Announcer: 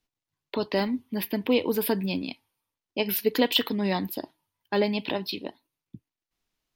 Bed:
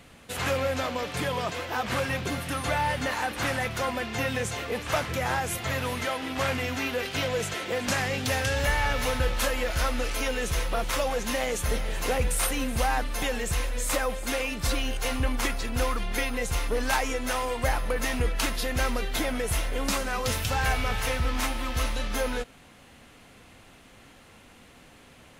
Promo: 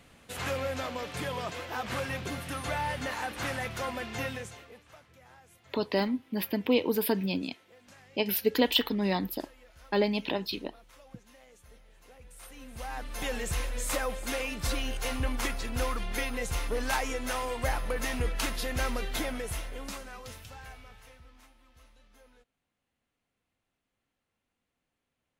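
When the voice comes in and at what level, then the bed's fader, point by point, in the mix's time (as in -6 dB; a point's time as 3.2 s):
5.20 s, -2.0 dB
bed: 4.25 s -5.5 dB
4.97 s -28.5 dB
12.17 s -28.5 dB
13.31 s -4 dB
19.18 s -4 dB
21.54 s -31.5 dB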